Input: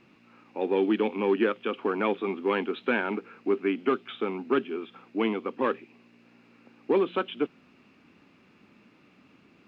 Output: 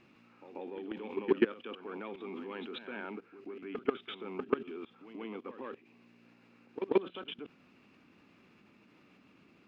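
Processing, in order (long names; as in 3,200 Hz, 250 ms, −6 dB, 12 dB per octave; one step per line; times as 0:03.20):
output level in coarse steps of 21 dB
backwards echo 136 ms −10 dB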